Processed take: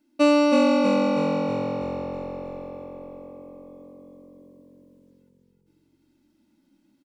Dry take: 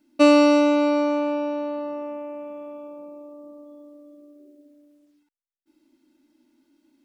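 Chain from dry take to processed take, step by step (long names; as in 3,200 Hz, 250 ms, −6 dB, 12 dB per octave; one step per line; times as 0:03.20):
echo with shifted repeats 321 ms, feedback 52%, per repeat −45 Hz, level −4 dB
level −3.5 dB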